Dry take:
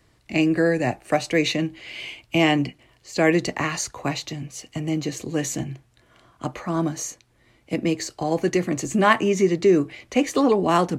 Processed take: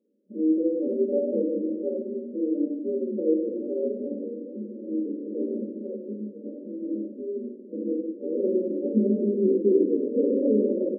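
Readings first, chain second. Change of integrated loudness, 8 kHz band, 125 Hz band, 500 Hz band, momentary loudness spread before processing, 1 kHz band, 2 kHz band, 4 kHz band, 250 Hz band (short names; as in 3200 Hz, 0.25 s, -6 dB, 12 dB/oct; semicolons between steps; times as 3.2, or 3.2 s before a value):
-4.0 dB, under -40 dB, under -10 dB, -1.5 dB, 14 LU, under -40 dB, under -40 dB, under -40 dB, -2.5 dB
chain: notches 50/100/150/200/250/300/350/400 Hz; on a send: frequency-shifting echo 0.499 s, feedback 35%, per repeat +75 Hz, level -6 dB; on the sum: FFT band-pass 190–600 Hz; shoebox room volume 290 m³, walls mixed, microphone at 1.4 m; gain -7 dB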